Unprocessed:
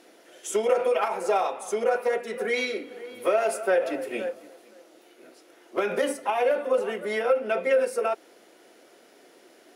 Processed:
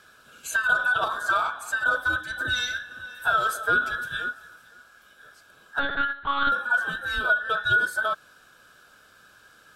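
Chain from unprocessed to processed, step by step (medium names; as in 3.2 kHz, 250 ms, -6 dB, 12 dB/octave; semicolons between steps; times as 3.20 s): every band turned upside down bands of 2 kHz; 5.79–6.52 s: monotone LPC vocoder at 8 kHz 280 Hz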